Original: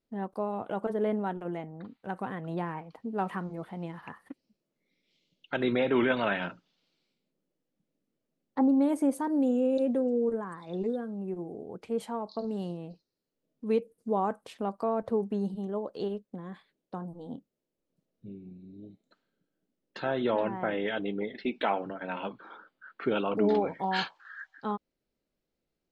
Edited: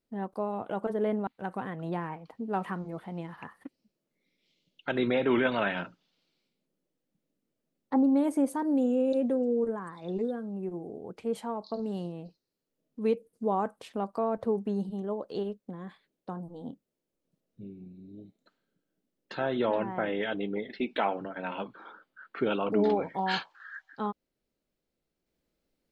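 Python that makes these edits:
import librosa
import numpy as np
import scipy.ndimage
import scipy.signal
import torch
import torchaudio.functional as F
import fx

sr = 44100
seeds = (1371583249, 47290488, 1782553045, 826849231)

y = fx.edit(x, sr, fx.cut(start_s=1.27, length_s=0.65), tone=tone)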